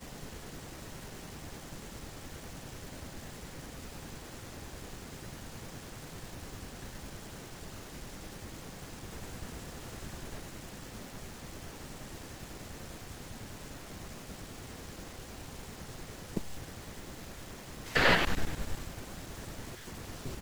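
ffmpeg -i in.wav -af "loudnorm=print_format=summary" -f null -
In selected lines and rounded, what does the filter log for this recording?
Input Integrated:    -38.4 LUFS
Input True Peak:     -11.0 dBTP
Input LRA:            12.6 LU
Input Threshold:     -48.4 LUFS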